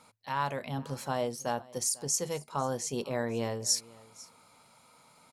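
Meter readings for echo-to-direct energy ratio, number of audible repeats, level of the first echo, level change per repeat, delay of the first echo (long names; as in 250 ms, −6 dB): −22.0 dB, 1, −22.0 dB, repeats not evenly spaced, 497 ms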